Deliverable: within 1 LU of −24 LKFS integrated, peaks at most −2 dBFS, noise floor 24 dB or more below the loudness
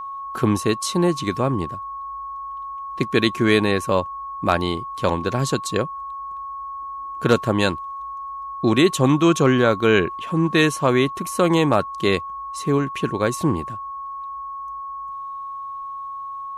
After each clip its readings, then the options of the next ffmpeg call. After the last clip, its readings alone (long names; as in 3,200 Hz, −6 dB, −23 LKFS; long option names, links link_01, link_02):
interfering tone 1,100 Hz; level of the tone −29 dBFS; integrated loudness −22.0 LKFS; sample peak −3.5 dBFS; target loudness −24.0 LKFS
→ -af "bandreject=frequency=1100:width=30"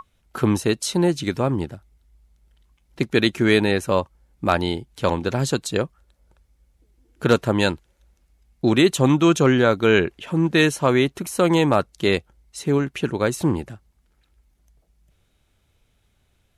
interfering tone none found; integrated loudness −20.5 LKFS; sample peak −4.0 dBFS; target loudness −24.0 LKFS
→ -af "volume=-3.5dB"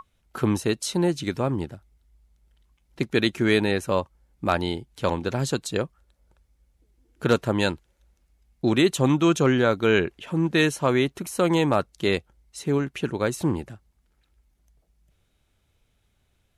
integrated loudness −24.0 LKFS; sample peak −7.5 dBFS; background noise floor −69 dBFS